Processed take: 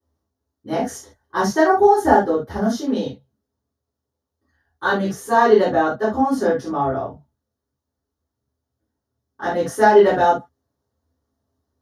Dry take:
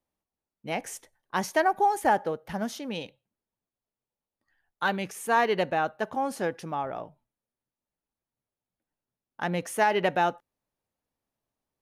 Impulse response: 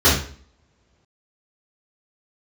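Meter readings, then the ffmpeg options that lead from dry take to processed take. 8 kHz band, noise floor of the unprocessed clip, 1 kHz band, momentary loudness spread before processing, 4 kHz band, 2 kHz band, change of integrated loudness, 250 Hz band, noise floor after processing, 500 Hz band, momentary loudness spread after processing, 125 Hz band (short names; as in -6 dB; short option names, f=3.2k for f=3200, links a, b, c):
+4.5 dB, under -85 dBFS, +8.0 dB, 13 LU, +3.5 dB, +5.5 dB, +9.5 dB, +12.5 dB, -82 dBFS, +12.5 dB, 14 LU, +7.5 dB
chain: -filter_complex "[0:a]equalizer=f=2.5k:t=o:w=0.57:g=-14[a];[1:a]atrim=start_sample=2205,atrim=end_sample=3969[b];[a][b]afir=irnorm=-1:irlink=0,volume=-13.5dB"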